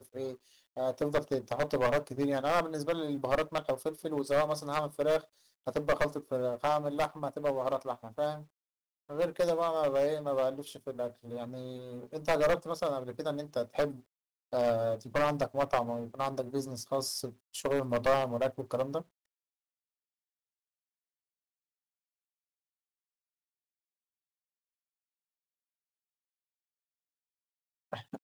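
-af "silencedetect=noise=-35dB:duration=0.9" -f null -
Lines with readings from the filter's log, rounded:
silence_start: 19.01
silence_end: 27.93 | silence_duration: 8.92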